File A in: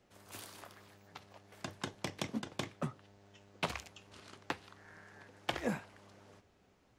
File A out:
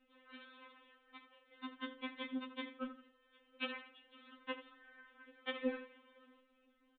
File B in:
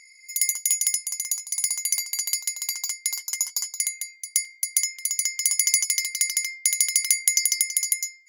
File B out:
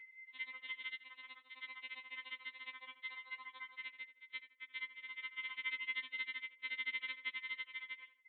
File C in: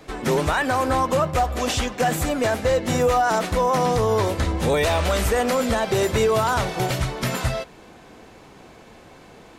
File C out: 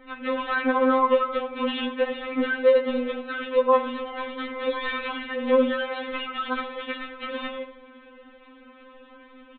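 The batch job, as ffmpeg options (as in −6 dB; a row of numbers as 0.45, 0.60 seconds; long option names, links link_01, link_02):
-filter_complex "[0:a]equalizer=frequency=760:width_type=o:width=0.27:gain=-11.5,acrossover=split=410|2400[link_01][link_02][link_03];[link_01]asoftclip=type=tanh:threshold=-29dB[link_04];[link_04][link_02][link_03]amix=inputs=3:normalize=0,asplit=2[link_05][link_06];[link_06]adelay=81,lowpass=frequency=2600:poles=1,volume=-12dB,asplit=2[link_07][link_08];[link_08]adelay=81,lowpass=frequency=2600:poles=1,volume=0.36,asplit=2[link_09][link_10];[link_10]adelay=81,lowpass=frequency=2600:poles=1,volume=0.36,asplit=2[link_11][link_12];[link_12]adelay=81,lowpass=frequency=2600:poles=1,volume=0.36[link_13];[link_05][link_07][link_09][link_11][link_13]amix=inputs=5:normalize=0,aresample=8000,aresample=44100,afftfilt=real='re*3.46*eq(mod(b,12),0)':imag='im*3.46*eq(mod(b,12),0)':win_size=2048:overlap=0.75"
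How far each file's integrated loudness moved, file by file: −3.0, −21.5, −3.5 LU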